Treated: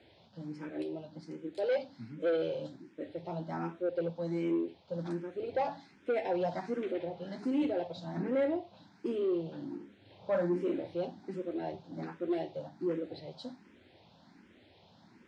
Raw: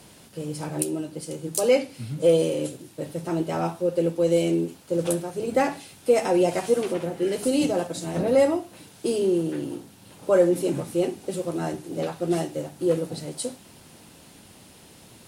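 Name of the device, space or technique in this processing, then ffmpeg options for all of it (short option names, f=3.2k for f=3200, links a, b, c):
barber-pole phaser into a guitar amplifier: -filter_complex "[0:a]asettb=1/sr,asplit=3[a][b][c];[a]atrim=end=9.764[d];[b]atrim=start=9.76:end=10.94,asetpts=PTS-STARTPTS,afade=t=in:d=0.004:c=qsin,afade=t=out:st=1.176:d=0.004:c=qsin,asplit=2[e][f];[f]adelay=40,volume=-5dB[g];[e][g]amix=inputs=2:normalize=0,atrim=end_sample=52038[h];[c]atrim=start=10.936[i];[d][h]acrossfade=d=0.004:c1=hsin:c2=qsin[j];[j][i]acrossfade=d=0.004:c1=qsin:c2=hsin,asplit=2[k][l];[l]afreqshift=1.3[m];[k][m]amix=inputs=2:normalize=1,asoftclip=type=tanh:threshold=-17.5dB,highpass=87,equalizer=f=140:t=q:w=4:g=-8,equalizer=f=460:t=q:w=4:g=-4,equalizer=f=1.2k:t=q:w=4:g=-6,equalizer=f=2.8k:t=q:w=4:g=-7,lowpass=f=3.9k:w=0.5412,lowpass=f=3.9k:w=1.3066,volume=-4.5dB"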